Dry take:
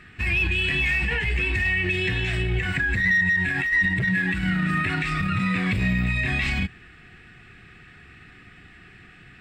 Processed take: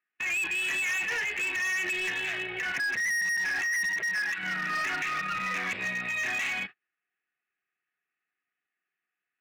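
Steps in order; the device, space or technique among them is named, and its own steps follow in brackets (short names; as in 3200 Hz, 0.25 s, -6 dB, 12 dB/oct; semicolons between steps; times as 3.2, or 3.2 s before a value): 3.85–4.37 HPF 270 Hz -> 850 Hz 6 dB/oct; walkie-talkie (BPF 580–2900 Hz; hard clip -27 dBFS, distortion -8 dB; gate -39 dBFS, range -36 dB)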